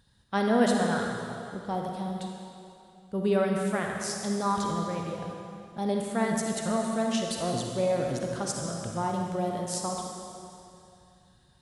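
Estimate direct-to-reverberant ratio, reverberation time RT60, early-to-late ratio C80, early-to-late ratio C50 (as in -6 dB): 0.5 dB, 2.7 s, 2.5 dB, 1.0 dB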